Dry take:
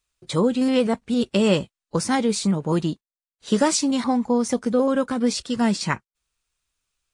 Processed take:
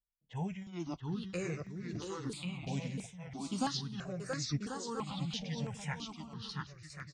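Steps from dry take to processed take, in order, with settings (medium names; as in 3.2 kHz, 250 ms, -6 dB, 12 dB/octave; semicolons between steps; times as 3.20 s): sawtooth pitch modulation -9.5 st, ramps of 1148 ms; level-controlled noise filter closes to 480 Hz, open at -21.5 dBFS; treble shelf 2.6 kHz -8.5 dB; tremolo 2.2 Hz, depth 80%; amplifier tone stack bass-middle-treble 5-5-5; on a send: bouncing-ball echo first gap 680 ms, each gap 0.6×, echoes 5; on the sum: stepped phaser 3 Hz 340–3100 Hz; trim +6.5 dB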